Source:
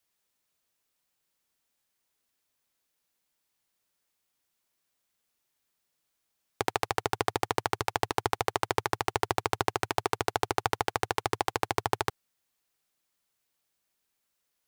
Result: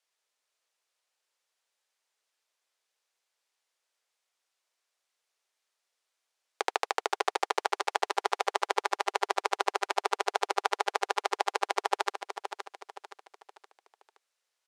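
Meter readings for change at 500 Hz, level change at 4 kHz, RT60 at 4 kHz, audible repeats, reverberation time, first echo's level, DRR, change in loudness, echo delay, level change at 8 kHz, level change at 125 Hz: −1.5 dB, +0.5 dB, no reverb audible, 4, no reverb audible, −9.0 dB, no reverb audible, −0.5 dB, 520 ms, −1.5 dB, below −40 dB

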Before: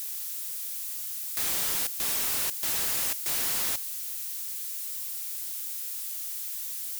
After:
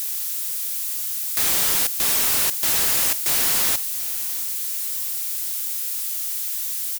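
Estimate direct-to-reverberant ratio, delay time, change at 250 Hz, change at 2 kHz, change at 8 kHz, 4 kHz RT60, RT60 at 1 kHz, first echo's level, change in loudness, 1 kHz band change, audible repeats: no reverb audible, 683 ms, +8.5 dB, +8.5 dB, +8.5 dB, no reverb audible, no reverb audible, −19.0 dB, +8.5 dB, +8.5 dB, 3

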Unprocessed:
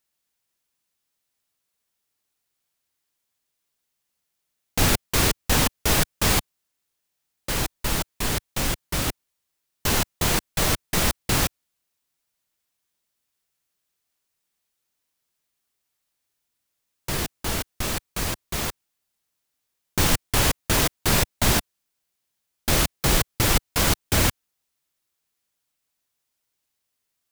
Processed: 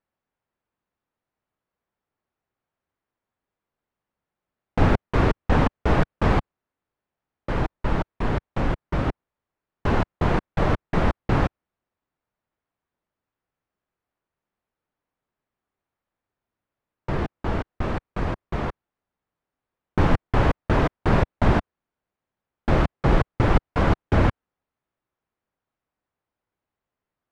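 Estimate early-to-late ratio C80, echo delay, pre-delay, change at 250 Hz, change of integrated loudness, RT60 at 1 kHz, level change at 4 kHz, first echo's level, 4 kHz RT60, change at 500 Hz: no reverb audible, no echo audible, no reverb audible, +4.0 dB, −1.5 dB, no reverb audible, −14.0 dB, no echo audible, no reverb audible, +4.0 dB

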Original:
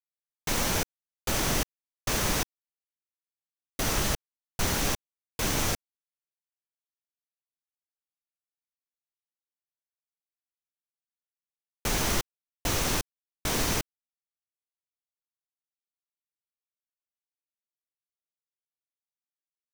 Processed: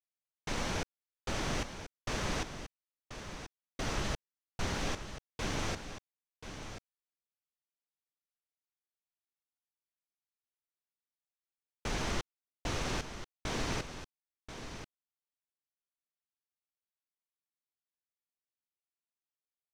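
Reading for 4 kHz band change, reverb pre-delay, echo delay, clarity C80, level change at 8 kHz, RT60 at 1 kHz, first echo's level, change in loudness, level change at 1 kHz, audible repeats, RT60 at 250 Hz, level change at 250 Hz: −8.5 dB, no reverb audible, 1,034 ms, no reverb audible, −13.0 dB, no reverb audible, −10.0 dB, −9.5 dB, −6.0 dB, 1, no reverb audible, −6.0 dB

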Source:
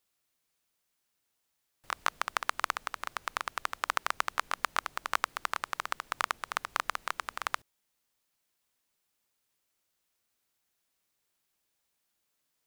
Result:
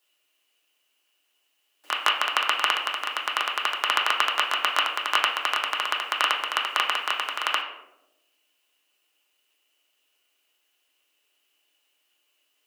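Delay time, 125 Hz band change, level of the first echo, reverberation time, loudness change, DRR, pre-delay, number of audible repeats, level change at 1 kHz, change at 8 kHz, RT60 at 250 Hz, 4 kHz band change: no echo audible, can't be measured, no echo audible, 0.95 s, +10.0 dB, −5.0 dB, 3 ms, no echo audible, +7.5 dB, +5.0 dB, 1.4 s, +17.0 dB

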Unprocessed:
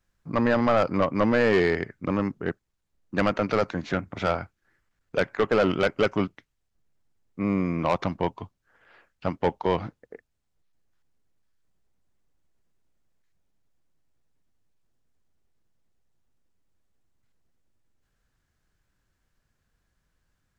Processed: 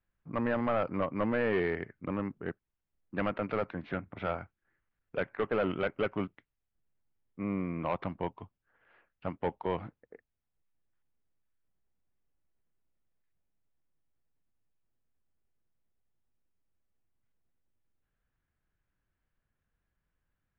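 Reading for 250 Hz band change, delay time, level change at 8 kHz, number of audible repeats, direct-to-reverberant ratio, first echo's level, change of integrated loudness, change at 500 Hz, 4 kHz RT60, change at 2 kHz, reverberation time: −8.5 dB, no echo audible, can't be measured, no echo audible, no reverb audible, no echo audible, −8.5 dB, −8.5 dB, no reverb audible, −8.5 dB, no reverb audible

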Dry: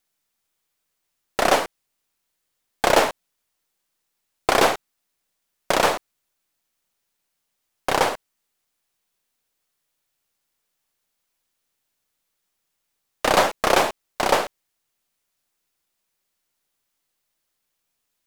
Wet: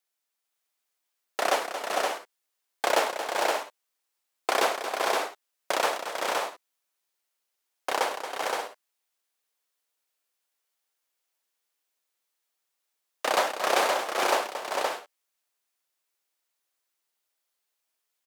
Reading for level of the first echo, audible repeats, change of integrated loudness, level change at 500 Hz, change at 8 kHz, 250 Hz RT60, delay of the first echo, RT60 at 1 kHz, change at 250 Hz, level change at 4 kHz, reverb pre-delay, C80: −10.0 dB, 5, −7.0 dB, −5.0 dB, −4.0 dB, no reverb audible, 227 ms, no reverb audible, −10.0 dB, −4.0 dB, no reverb audible, no reverb audible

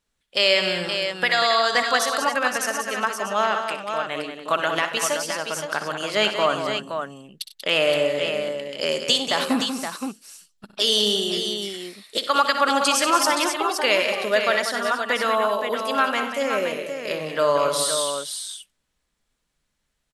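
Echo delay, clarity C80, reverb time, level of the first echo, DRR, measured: 62 ms, no reverb audible, no reverb audible, −12.0 dB, no reverb audible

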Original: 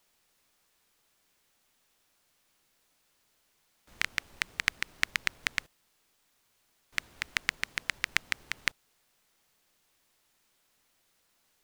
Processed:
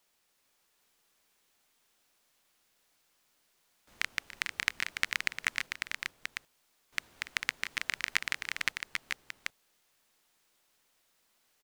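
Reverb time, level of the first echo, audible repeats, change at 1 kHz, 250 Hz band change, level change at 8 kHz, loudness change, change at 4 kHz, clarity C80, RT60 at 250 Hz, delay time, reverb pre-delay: no reverb audible, −16.5 dB, 3, −0.5 dB, −2.0 dB, −0.5 dB, −2.0 dB, −1.0 dB, no reverb audible, no reverb audible, 287 ms, no reverb audible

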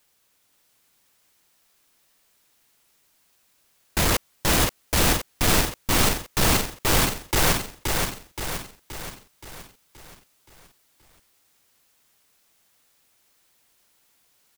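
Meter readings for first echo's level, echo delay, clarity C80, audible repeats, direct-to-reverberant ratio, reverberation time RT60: −4.0 dB, 524 ms, no reverb audible, 6, no reverb audible, no reverb audible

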